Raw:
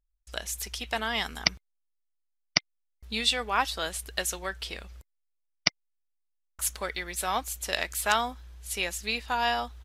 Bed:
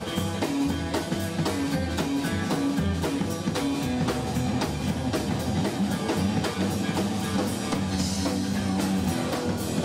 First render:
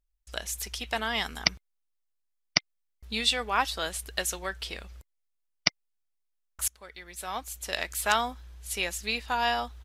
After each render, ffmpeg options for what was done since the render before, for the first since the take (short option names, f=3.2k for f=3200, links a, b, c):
-filter_complex "[0:a]asplit=2[a][b];[a]atrim=end=6.68,asetpts=PTS-STARTPTS,afade=t=out:st=6.676:d=0.004:c=hsin:silence=0.0841395[c];[b]atrim=start=6.68,asetpts=PTS-STARTPTS,afade=t=in:d=1.41:silence=0.0841395[d];[c][d]concat=n=2:v=0:a=1"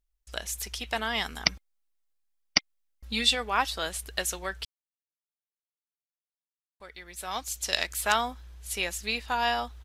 -filter_complex "[0:a]asettb=1/sr,asplit=3[a][b][c];[a]atrim=end=1.484[d];[b]atrim=start=1.48:end=3.35,asetpts=PTS-STARTPTS,afade=t=in:d=0.004:c=qsin,afade=t=out:st=1.866:d=0.004:c=qsin,aecho=1:1:3.7:0.61,atrim=end_sample=82467[e];[c]atrim=start=3.346[f];[d][e]acrossfade=d=0.004:c1=hsin:c2=qsin[g];[g][f]acrossfade=d=0.004:c1=qsin:c2=hsin,asettb=1/sr,asplit=3[h][i][j];[h]atrim=end=7.314[k];[i]atrim=start=7.31:end=7.87,asetpts=PTS-STARTPTS,afade=t=in:d=0.004:c=qsin,afade=t=out:st=0.556:d=0.004:c=qsin,equalizer=f=5.4k:t=o:w=1.5:g=9[l];[j]atrim=start=7.866[m];[k][l]acrossfade=d=0.004:c1=hsin:c2=qsin[n];[n][m]acrossfade=d=0.004:c1=qsin:c2=hsin,asplit=3[o][p][q];[o]atrim=end=4.65,asetpts=PTS-STARTPTS,afade=t=out:st=4.646:d=0.004:c=hsin[r];[p]atrim=start=4.65:end=6.8,asetpts=PTS-STARTPTS,volume=0[s];[q]atrim=start=6.8,asetpts=PTS-STARTPTS,afade=t=in:d=0.004:c=hsin[t];[r][s][t]concat=n=3:v=0:a=1"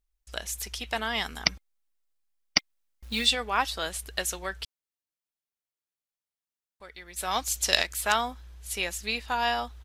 -filter_complex "[0:a]asplit=3[a][b][c];[a]afade=t=out:st=2.57:d=0.02[d];[b]acrusher=bits=4:mode=log:mix=0:aa=0.000001,afade=t=in:st=2.57:d=0.02,afade=t=out:st=3.25:d=0.02[e];[c]afade=t=in:st=3.25:d=0.02[f];[d][e][f]amix=inputs=3:normalize=0,asettb=1/sr,asplit=3[g][h][i];[g]atrim=end=7.164[j];[h]atrim=start=7.16:end=7.82,asetpts=PTS-STARTPTS,afade=t=in:d=0.004:c=qsin,afade=t=out:st=0.656:d=0.004:c=qsin,acontrast=31[k];[i]atrim=start=7.816[l];[j][k]acrossfade=d=0.004:c1=hsin:c2=qsin[m];[m][l]acrossfade=d=0.004:c1=qsin:c2=hsin"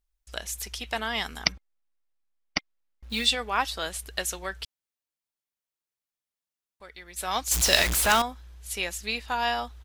-filter_complex "[0:a]asettb=1/sr,asplit=3[a][b][c];[a]atrim=end=1.524[d];[b]atrim=start=1.52:end=3.1,asetpts=PTS-STARTPTS,afade=t=in:d=0.004:c=qsin,afade=t=out:st=1.576:d=0.004:c=qsin,lowpass=f=2.2k:p=1[e];[c]atrim=start=3.096[f];[d][e]acrossfade=d=0.004:c1=hsin:c2=qsin[g];[g][f]acrossfade=d=0.004:c1=qsin:c2=hsin,asettb=1/sr,asplit=3[h][i][j];[h]atrim=end=7.514[k];[i]atrim=start=7.51:end=8.22,asetpts=PTS-STARTPTS,afade=t=in:d=0.004:c=qsin,afade=t=out:st=0.706:d=0.004:c=qsin,aeval=exprs='val(0)+0.5*0.0841*sgn(val(0))':c=same[l];[j]atrim=start=8.216[m];[k][l]acrossfade=d=0.004:c1=hsin:c2=qsin[n];[n][m]acrossfade=d=0.004:c1=qsin:c2=hsin"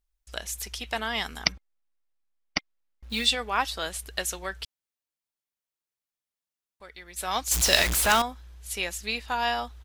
-af anull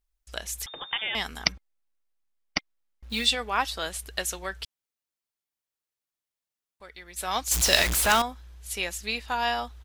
-filter_complex "[0:a]asettb=1/sr,asplit=3[a][b][c];[a]atrim=end=0.664[d];[b]atrim=start=0.66:end=1.15,asetpts=PTS-STARTPTS,afade=t=in:d=0.004:c=qsin,afade=t=out:st=0.486:d=0.004:c=qsin,lowpass=f=3.1k:t=q:w=0.5098,lowpass=f=3.1k:t=q:w=0.6013,lowpass=f=3.1k:t=q:w=0.9,lowpass=f=3.1k:t=q:w=2.563,afreqshift=-3700[e];[c]atrim=start=1.146[f];[d][e]acrossfade=d=0.004:c1=hsin:c2=qsin[g];[g][f]acrossfade=d=0.004:c1=qsin:c2=hsin"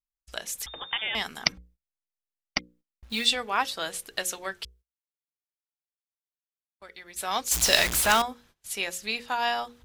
-af "bandreject=f=60:t=h:w=6,bandreject=f=120:t=h:w=6,bandreject=f=180:t=h:w=6,bandreject=f=240:t=h:w=6,bandreject=f=300:t=h:w=6,bandreject=f=360:t=h:w=6,bandreject=f=420:t=h:w=6,bandreject=f=480:t=h:w=6,bandreject=f=540:t=h:w=6,agate=range=-20dB:threshold=-55dB:ratio=16:detection=peak"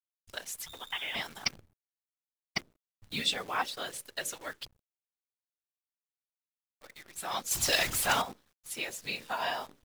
-af "afftfilt=real='hypot(re,im)*cos(2*PI*random(0))':imag='hypot(re,im)*sin(2*PI*random(1))':win_size=512:overlap=0.75,acrusher=bits=9:dc=4:mix=0:aa=0.000001"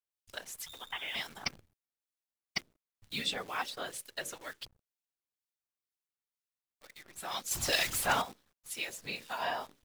-filter_complex "[0:a]acrossover=split=1900[a][b];[a]aeval=exprs='val(0)*(1-0.5/2+0.5/2*cos(2*PI*2.1*n/s))':c=same[c];[b]aeval=exprs='val(0)*(1-0.5/2-0.5/2*cos(2*PI*2.1*n/s))':c=same[d];[c][d]amix=inputs=2:normalize=0"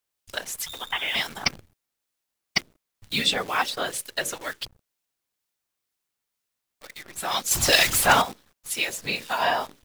-af "volume=11.5dB"